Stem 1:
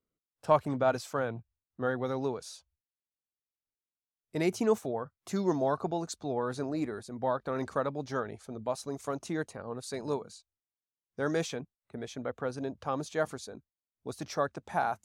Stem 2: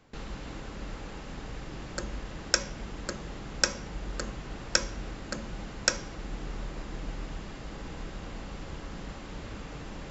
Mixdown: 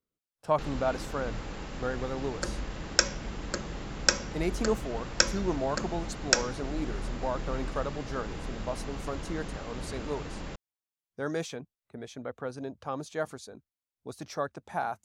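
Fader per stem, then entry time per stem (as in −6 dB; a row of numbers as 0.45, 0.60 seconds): −2.0, +2.0 decibels; 0.00, 0.45 seconds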